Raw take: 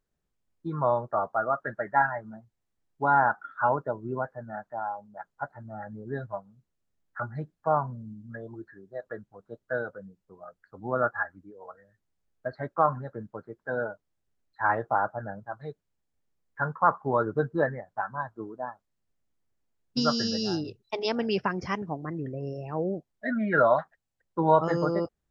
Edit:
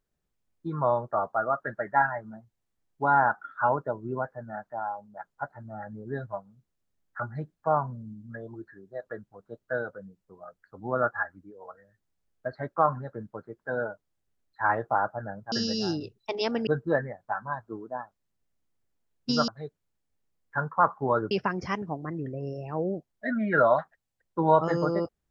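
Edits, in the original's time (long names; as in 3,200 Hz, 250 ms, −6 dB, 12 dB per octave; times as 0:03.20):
0:15.52–0:17.35: swap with 0:20.16–0:21.31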